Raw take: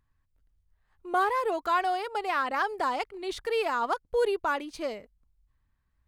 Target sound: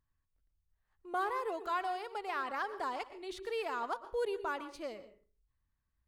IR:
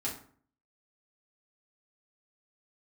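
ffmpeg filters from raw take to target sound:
-filter_complex "[0:a]asplit=2[s0][s1];[1:a]atrim=start_sample=2205,asetrate=61740,aresample=44100,adelay=114[s2];[s1][s2]afir=irnorm=-1:irlink=0,volume=0.211[s3];[s0][s3]amix=inputs=2:normalize=0,volume=0.355"

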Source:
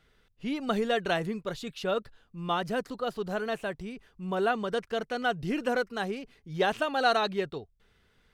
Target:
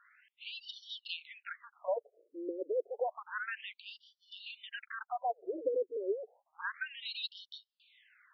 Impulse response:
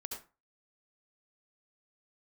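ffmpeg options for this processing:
-af "acompressor=threshold=0.02:ratio=12,asoftclip=type=hard:threshold=0.0282,afftfilt=real='re*between(b*sr/1024,390*pow(4200/390,0.5+0.5*sin(2*PI*0.3*pts/sr))/1.41,390*pow(4200/390,0.5+0.5*sin(2*PI*0.3*pts/sr))*1.41)':imag='im*between(b*sr/1024,390*pow(4200/390,0.5+0.5*sin(2*PI*0.3*pts/sr))/1.41,390*pow(4200/390,0.5+0.5*sin(2*PI*0.3*pts/sr))*1.41)':win_size=1024:overlap=0.75,volume=2.66"

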